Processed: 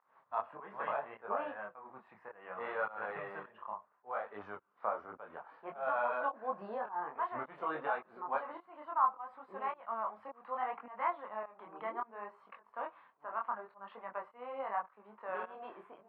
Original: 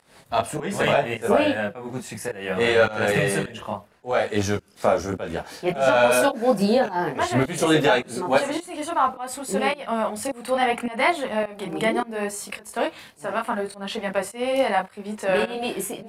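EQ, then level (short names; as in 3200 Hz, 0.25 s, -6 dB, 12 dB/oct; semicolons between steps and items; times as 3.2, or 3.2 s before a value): band-pass 1100 Hz, Q 4.1; air absorption 470 m; -3.0 dB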